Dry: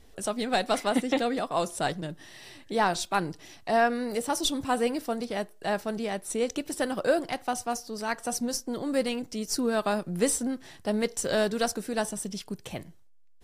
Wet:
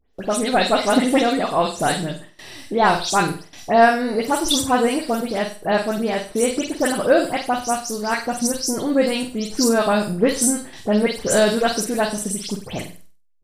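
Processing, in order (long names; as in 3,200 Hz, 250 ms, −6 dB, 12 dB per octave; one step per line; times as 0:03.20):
every frequency bin delayed by itself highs late, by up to 135 ms
noise gate with hold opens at −38 dBFS
on a send: flutter between parallel walls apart 8.2 metres, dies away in 0.37 s
on the sum: level +8.5 dB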